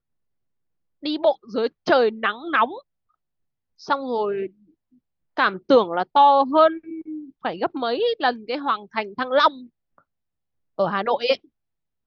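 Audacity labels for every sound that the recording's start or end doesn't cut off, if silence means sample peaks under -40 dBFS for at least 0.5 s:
1.030000	2.800000	sound
3.810000	4.470000	sound
5.370000	9.980000	sound
10.780000	11.360000	sound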